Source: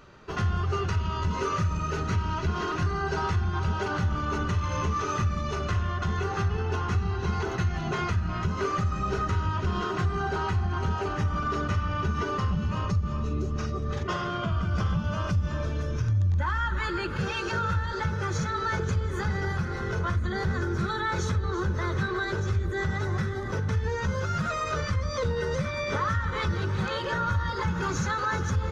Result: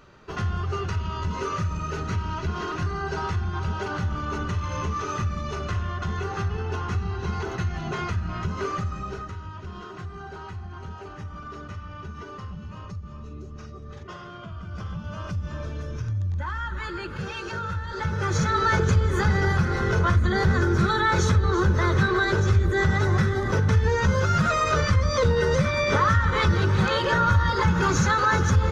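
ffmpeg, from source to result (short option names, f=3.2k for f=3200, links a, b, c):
-af "volume=16.5dB,afade=t=out:st=8.7:d=0.65:silence=0.334965,afade=t=in:st=14.57:d=0.97:silence=0.446684,afade=t=in:st=17.86:d=0.7:silence=0.316228"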